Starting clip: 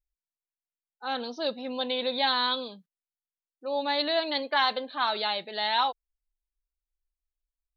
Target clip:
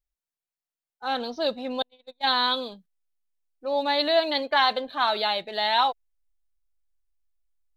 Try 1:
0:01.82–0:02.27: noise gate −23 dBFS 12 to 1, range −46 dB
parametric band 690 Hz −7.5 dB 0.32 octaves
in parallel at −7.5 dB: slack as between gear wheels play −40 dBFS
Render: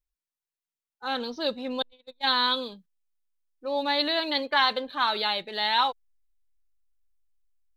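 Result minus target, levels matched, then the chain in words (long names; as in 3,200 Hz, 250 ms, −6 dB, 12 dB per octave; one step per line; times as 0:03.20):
500 Hz band −3.0 dB
0:01.82–0:02.27: noise gate −23 dBFS 12 to 1, range −46 dB
parametric band 690 Hz +4 dB 0.32 octaves
in parallel at −7.5 dB: slack as between gear wheels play −40 dBFS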